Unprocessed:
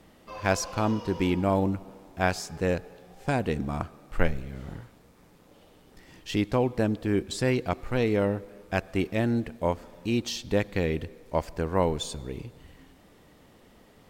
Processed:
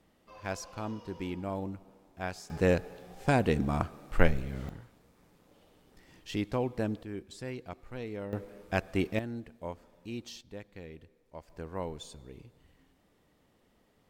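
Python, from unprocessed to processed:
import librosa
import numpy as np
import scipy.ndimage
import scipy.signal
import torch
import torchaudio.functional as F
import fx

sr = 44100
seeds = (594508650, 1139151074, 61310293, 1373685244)

y = fx.gain(x, sr, db=fx.steps((0.0, -11.5), (2.5, 1.0), (4.69, -6.5), (7.03, -14.5), (8.33, -2.5), (9.19, -13.0), (10.41, -19.5), (11.5, -12.5)))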